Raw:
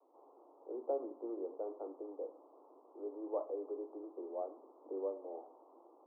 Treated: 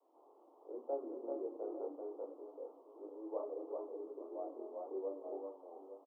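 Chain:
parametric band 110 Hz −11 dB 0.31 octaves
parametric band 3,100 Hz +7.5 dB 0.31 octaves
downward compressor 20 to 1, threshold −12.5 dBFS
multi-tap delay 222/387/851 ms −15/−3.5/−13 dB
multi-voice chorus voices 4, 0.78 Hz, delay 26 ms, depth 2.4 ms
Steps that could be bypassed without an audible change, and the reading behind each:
parametric band 110 Hz: nothing at its input below 250 Hz
parametric band 3,100 Hz: nothing at its input above 1,200 Hz
downward compressor, threshold −12.5 dBFS: peak of its input −25.0 dBFS

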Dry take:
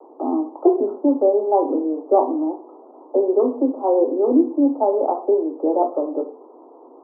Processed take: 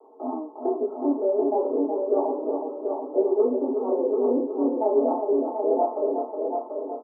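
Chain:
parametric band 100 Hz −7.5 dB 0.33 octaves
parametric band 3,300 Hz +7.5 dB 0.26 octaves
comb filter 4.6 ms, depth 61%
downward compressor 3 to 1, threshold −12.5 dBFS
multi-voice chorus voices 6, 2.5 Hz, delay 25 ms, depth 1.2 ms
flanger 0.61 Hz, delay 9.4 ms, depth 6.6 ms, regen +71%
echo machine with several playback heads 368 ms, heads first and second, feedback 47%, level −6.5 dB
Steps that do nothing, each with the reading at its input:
parametric band 100 Hz: nothing at its input below 210 Hz
parametric band 3,300 Hz: nothing at its input above 1,100 Hz

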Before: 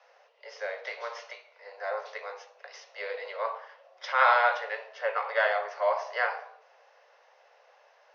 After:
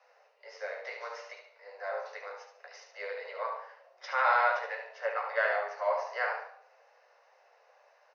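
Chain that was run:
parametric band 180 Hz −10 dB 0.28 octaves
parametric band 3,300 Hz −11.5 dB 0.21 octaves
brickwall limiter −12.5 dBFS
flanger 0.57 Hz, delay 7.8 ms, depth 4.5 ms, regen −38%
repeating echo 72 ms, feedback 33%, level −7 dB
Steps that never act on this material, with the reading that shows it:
parametric band 180 Hz: nothing at its input below 400 Hz

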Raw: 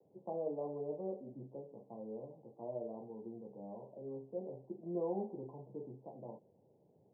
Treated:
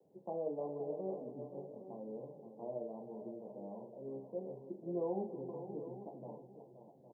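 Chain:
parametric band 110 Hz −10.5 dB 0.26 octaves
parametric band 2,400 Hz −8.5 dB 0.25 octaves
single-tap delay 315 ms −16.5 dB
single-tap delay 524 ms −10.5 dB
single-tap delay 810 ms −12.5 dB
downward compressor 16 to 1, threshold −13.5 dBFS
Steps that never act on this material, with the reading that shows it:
parametric band 2,400 Hz: nothing at its input above 1,000 Hz
downward compressor, threshold −13.5 dBFS: peak of its input −27.5 dBFS

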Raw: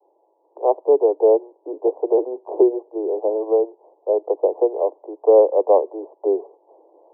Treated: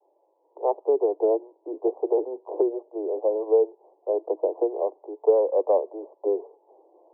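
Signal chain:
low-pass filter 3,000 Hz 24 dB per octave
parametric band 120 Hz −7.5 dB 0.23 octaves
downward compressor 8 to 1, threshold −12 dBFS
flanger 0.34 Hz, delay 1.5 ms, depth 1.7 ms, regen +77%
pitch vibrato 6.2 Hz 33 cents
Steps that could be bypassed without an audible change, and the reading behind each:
low-pass filter 3,000 Hz: nothing at its input above 1,000 Hz
parametric band 120 Hz: nothing at its input below 290 Hz

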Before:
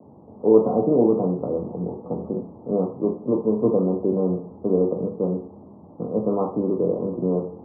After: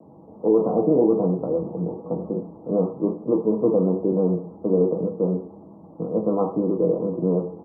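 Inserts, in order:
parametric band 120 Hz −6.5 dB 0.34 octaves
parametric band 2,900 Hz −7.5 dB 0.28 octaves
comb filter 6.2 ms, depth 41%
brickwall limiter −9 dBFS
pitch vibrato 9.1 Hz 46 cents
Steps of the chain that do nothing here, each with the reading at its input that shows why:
parametric band 2,900 Hz: nothing at its input above 1,100 Hz

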